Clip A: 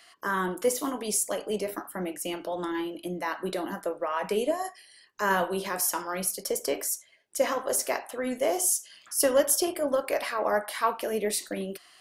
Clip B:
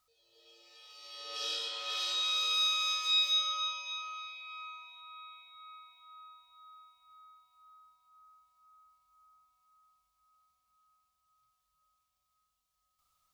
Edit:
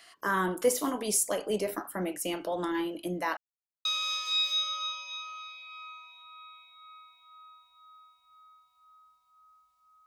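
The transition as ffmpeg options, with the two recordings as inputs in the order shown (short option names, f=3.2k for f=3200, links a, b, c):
-filter_complex "[0:a]apad=whole_dur=10.06,atrim=end=10.06,asplit=2[a][b];[a]atrim=end=3.37,asetpts=PTS-STARTPTS,afade=t=out:st=3.366:d=0.004:c=hsin[c];[b]atrim=start=3.37:end=3.85,asetpts=PTS-STARTPTS,volume=0[d];[1:a]atrim=start=2.63:end=8.84,asetpts=PTS-STARTPTS,afade=t=in:d=0.004:c=hsin[e];[c][d][e]concat=n=3:v=0:a=1"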